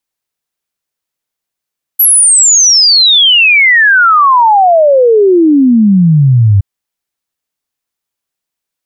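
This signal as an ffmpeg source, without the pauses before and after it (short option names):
-f lavfi -i "aevalsrc='0.708*clip(min(t,4.62-t)/0.01,0,1)*sin(2*PI*12000*4.62/log(95/12000)*(exp(log(95/12000)*t/4.62)-1))':d=4.62:s=44100"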